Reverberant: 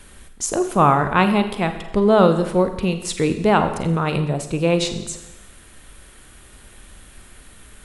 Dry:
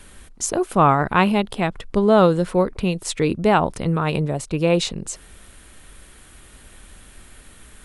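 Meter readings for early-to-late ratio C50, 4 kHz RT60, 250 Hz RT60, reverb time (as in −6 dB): 9.5 dB, 0.95 s, 0.95 s, 0.95 s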